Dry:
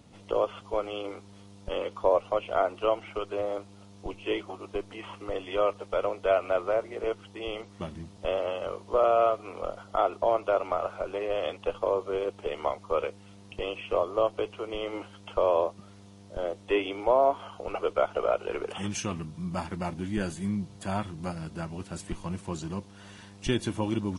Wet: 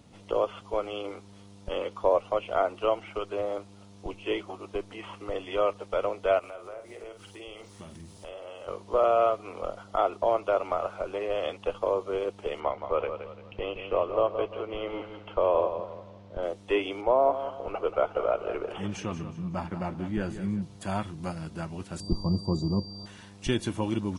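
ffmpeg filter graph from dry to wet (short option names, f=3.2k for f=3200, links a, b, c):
-filter_complex "[0:a]asettb=1/sr,asplit=3[a][b][c];[a]atrim=end=6.394[d];[b]atrim=start=6.39:end=8.68,asetpts=PTS-STARTPTS,afade=t=in:d=0.004:c=qsin,afade=t=out:st=2.286:d=0.004:c=qsin,aemphasis=mode=production:type=50fm,acompressor=threshold=-43dB:ratio=3:attack=3.2:release=140:knee=1:detection=peak,asplit=2[e][f];[f]adelay=48,volume=-8dB[g];[e][g]amix=inputs=2:normalize=0,atrim=end_sample=100989[h];[c]atrim=start=8.676[i];[d][h]acrossfade=d=0.004:c1=hsin:c2=qsin[j];[j][i]acrossfade=d=0.004:c1=qsin:c2=hsin,asettb=1/sr,asplit=3[k][l][m];[k]atrim=end=12.604[n];[l]atrim=start=12.6:end=16.43,asetpts=PTS-STARTPTS,afade=t=in:d=0.004:c=qsin,afade=t=out:st=3.826:d=0.004:c=qsin,lowpass=3k,aecho=1:1:172|344|516|688:0.355|0.128|0.046|0.0166,atrim=end_sample=168903[o];[m]atrim=start=16.426[p];[n][o]acrossfade=d=0.004:c1=hsin:c2=qsin[q];[q][p]acrossfade=d=0.004:c1=qsin:c2=hsin,asettb=1/sr,asplit=3[r][s][t];[r]atrim=end=17.014[u];[s]atrim=start=17.01:end=20.62,asetpts=PTS-STARTPTS,afade=t=in:d=0.004:c=qsin,afade=t=out:st=3.606:d=0.004:c=qsin,aemphasis=mode=reproduction:type=75kf,aecho=1:1:183|366|549|732:0.282|0.0986|0.0345|0.0121,atrim=end_sample=159201[v];[t]atrim=start=20.616[w];[u][v]acrossfade=d=0.004:c1=hsin:c2=qsin[x];[x][w]acrossfade=d=0.004:c1=qsin:c2=hsin,asettb=1/sr,asplit=3[y][z][aa];[y]atrim=end=22.004[ab];[z]atrim=start=22:end=23.06,asetpts=PTS-STARTPTS,afade=t=in:d=0.004:c=qsin,afade=t=out:st=1.056:d=0.004:c=qsin,asuperstop=centerf=2100:order=20:qfactor=0.98,tiltshelf=f=910:g=9,aeval=exprs='val(0)+0.00708*sin(2*PI*4700*n/s)':c=same[ac];[aa]atrim=start=23.056[ad];[ab][ac]acrossfade=d=0.004:c1=hsin:c2=qsin[ae];[ae][ad]acrossfade=d=0.004:c1=qsin:c2=hsin"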